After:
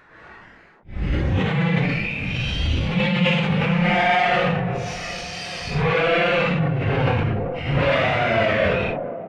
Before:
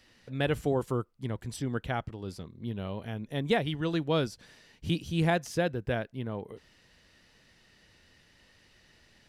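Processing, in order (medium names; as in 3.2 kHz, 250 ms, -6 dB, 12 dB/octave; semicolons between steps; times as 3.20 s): comb 1.5 ms, depth 77%; wow and flutter 120 cents; in parallel at +2 dB: compression, threshold -39 dBFS, peak gain reduction 18 dB; on the sum: fuzz box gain 40 dB, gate -45 dBFS; low-pass sweep 420 Hz -> 2.4 kHz, 3.85–5.06 s; Paulstretch 6.4×, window 0.05 s, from 4.67 s; on a send: feedback echo behind a band-pass 387 ms, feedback 85%, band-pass 410 Hz, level -16 dB; on the sum: decay stretcher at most 25 dB/s; trim -7 dB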